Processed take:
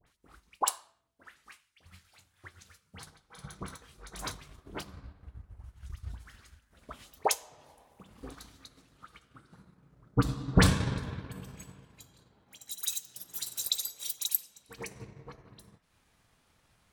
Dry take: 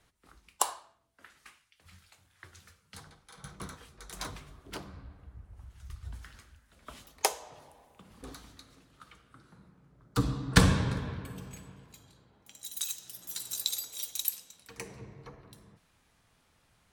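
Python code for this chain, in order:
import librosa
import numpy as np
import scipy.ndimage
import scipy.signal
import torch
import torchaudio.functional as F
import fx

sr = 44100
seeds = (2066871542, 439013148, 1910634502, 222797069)

y = np.clip(10.0 ** (15.0 / 20.0) * x, -1.0, 1.0) / 10.0 ** (15.0 / 20.0)
y = fx.dispersion(y, sr, late='highs', ms=67.0, hz=1600.0)
y = fx.transient(y, sr, attack_db=3, sustain_db=-5)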